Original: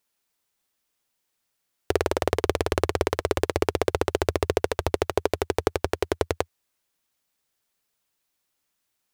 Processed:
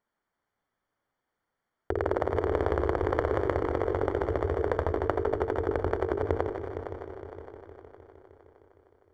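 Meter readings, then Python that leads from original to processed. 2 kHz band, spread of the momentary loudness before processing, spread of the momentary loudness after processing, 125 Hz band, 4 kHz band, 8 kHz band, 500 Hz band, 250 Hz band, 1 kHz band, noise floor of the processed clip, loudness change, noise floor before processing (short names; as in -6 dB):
-5.5 dB, 3 LU, 13 LU, -1.0 dB, under -15 dB, under -20 dB, -2.5 dB, -2.0 dB, -2.5 dB, -85 dBFS, -3.0 dB, -78 dBFS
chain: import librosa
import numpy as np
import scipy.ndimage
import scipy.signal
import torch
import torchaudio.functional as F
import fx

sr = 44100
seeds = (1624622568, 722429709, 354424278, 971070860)

p1 = fx.hum_notches(x, sr, base_hz=50, count=9)
p2 = fx.over_compress(p1, sr, threshold_db=-27.0, ratio=-1.0)
p3 = scipy.signal.savgol_filter(p2, 41, 4, mode='constant')
p4 = p3 + fx.echo_heads(p3, sr, ms=154, heads='first and third', feedback_pct=65, wet_db=-11, dry=0)
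y = fx.echo_warbled(p4, sr, ms=86, feedback_pct=75, rate_hz=2.8, cents=50, wet_db=-14.0)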